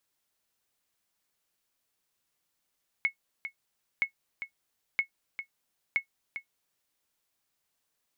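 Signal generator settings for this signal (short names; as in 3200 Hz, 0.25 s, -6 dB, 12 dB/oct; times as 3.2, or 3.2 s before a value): sonar ping 2190 Hz, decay 0.10 s, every 0.97 s, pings 4, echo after 0.40 s, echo -10.5 dB -17 dBFS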